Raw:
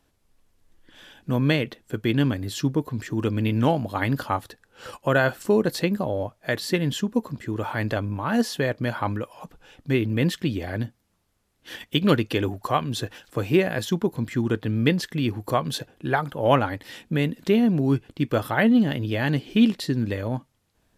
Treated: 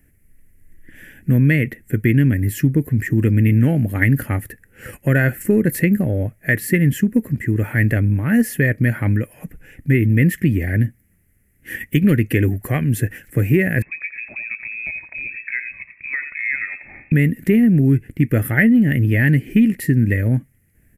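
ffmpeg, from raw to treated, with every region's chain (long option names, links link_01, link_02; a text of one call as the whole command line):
ffmpeg -i in.wav -filter_complex "[0:a]asettb=1/sr,asplit=3[link_01][link_02][link_03];[link_01]atrim=end=13.824[link_04];[link_02]atrim=start=13.82:end=17.12,asetpts=PTS-STARTPTS,afade=type=in:duration=0.004:curve=qsin,afade=type=out:start_time=3.296:duration=0.004:curve=qsin,acompressor=threshold=-35dB:ratio=3:attack=3.2:release=140:knee=1:detection=peak,lowpass=frequency=2300:width_type=q:width=0.5098,lowpass=frequency=2300:width_type=q:width=0.6013,lowpass=frequency=2300:width_type=q:width=0.9,lowpass=frequency=2300:width_type=q:width=2.563,afreqshift=-2700,aecho=1:1:87|174:0.282|0.0507,atrim=end_sample=145530[link_05];[link_03]atrim=start=17.116[link_06];[link_04][link_05]acrossfade=duration=0.004:curve1=hsin:curve2=qsin[link_07];[link_07][link_06]acrossfade=duration=0.004:curve1=qsin:curve2=hsin,acontrast=38,firequalizer=gain_entry='entry(110,0);entry(1000,-27);entry(1900,2);entry(3600,-28);entry(7400,-10);entry(11000,1)':delay=0.05:min_phase=1,acompressor=threshold=-18dB:ratio=6,volume=8dB" out.wav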